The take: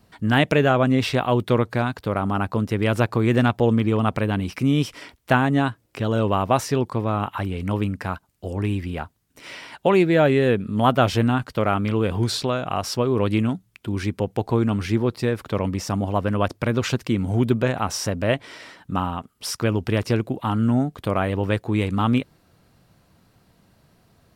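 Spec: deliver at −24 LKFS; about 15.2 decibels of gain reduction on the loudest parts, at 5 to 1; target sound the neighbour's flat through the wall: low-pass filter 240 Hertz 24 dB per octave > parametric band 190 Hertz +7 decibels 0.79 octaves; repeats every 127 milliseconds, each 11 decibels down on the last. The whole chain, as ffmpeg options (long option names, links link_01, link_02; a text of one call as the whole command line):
ffmpeg -i in.wav -af "acompressor=threshold=-31dB:ratio=5,lowpass=frequency=240:width=0.5412,lowpass=frequency=240:width=1.3066,equalizer=frequency=190:width_type=o:width=0.79:gain=7,aecho=1:1:127|254|381:0.282|0.0789|0.0221,volume=10.5dB" out.wav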